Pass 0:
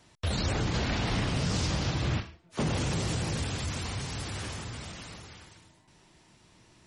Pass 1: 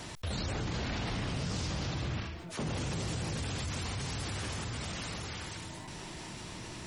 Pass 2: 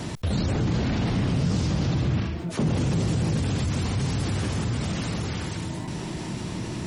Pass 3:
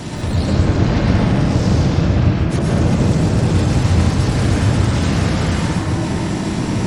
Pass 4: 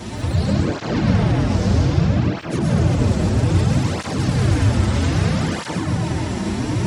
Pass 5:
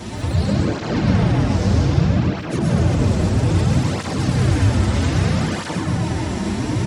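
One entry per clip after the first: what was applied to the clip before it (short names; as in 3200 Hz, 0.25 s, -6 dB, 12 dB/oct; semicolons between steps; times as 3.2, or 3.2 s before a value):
fast leveller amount 70%; gain -7.5 dB
bell 180 Hz +11 dB 3 oct; in parallel at -2 dB: limiter -26 dBFS, peak gain reduction 9 dB
in parallel at -3 dB: level quantiser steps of 16 dB; on the sum: soft clip -21 dBFS, distortion -14 dB; plate-style reverb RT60 2.1 s, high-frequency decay 0.3×, pre-delay 95 ms, DRR -5.5 dB; gain +4 dB
tape flanging out of phase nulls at 0.62 Hz, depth 7.4 ms
echo 0.123 s -11.5 dB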